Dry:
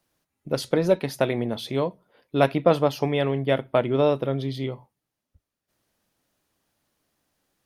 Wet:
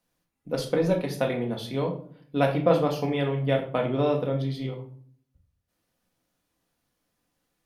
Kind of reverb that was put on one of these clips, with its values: simulated room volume 510 m³, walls furnished, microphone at 1.9 m; trim -5.5 dB

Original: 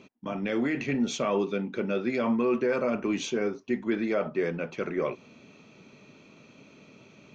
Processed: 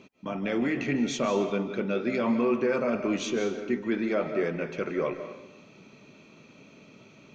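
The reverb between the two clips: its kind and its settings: algorithmic reverb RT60 0.88 s, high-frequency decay 0.9×, pre-delay 115 ms, DRR 8 dB

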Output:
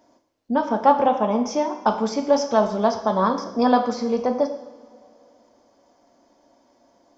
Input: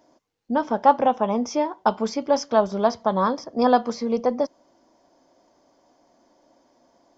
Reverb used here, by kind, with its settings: two-slope reverb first 0.72 s, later 2.9 s, from -18 dB, DRR 5 dB

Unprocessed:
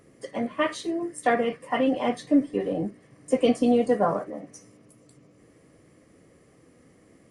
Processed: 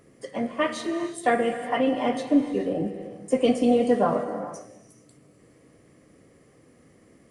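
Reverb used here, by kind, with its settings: gated-style reverb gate 470 ms flat, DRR 8 dB

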